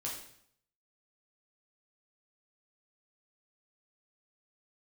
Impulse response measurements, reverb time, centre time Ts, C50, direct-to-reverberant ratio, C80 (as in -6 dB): 0.65 s, 38 ms, 4.0 dB, -4.0 dB, 7.5 dB